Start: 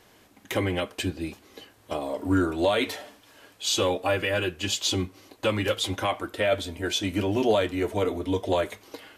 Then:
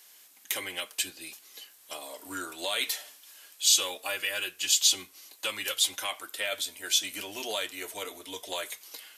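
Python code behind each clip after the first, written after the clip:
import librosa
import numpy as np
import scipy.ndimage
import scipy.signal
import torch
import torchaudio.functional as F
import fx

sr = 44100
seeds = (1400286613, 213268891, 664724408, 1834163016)

y = np.diff(x, prepend=0.0)
y = y * 10.0 ** (8.0 / 20.0)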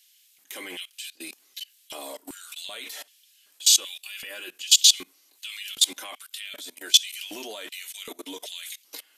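y = fx.level_steps(x, sr, step_db=23)
y = fx.filter_lfo_highpass(y, sr, shape='square', hz=1.3, low_hz=250.0, high_hz=2900.0, q=1.7)
y = y * 10.0 ** (7.5 / 20.0)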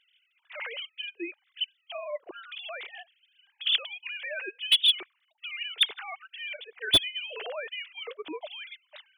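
y = fx.sine_speech(x, sr)
y = fx.slew_limit(y, sr, full_power_hz=570.0)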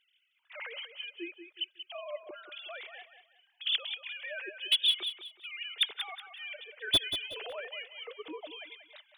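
y = fx.echo_feedback(x, sr, ms=185, feedback_pct=30, wet_db=-9.5)
y = y * 10.0 ** (-5.0 / 20.0)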